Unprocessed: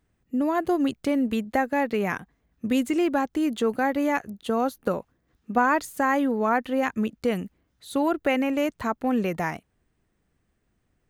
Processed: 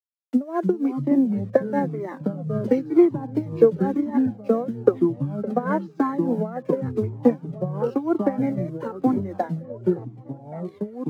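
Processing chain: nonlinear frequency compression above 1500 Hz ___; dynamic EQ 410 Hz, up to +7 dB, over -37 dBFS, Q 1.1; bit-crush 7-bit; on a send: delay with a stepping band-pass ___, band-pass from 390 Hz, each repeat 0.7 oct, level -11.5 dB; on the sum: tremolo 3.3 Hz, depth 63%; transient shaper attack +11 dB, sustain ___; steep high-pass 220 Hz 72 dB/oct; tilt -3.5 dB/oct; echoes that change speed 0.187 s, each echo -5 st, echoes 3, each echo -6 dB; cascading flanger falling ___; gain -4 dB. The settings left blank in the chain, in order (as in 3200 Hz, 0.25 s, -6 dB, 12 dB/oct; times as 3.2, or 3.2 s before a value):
1.5:1, 0.561 s, -6 dB, 0.98 Hz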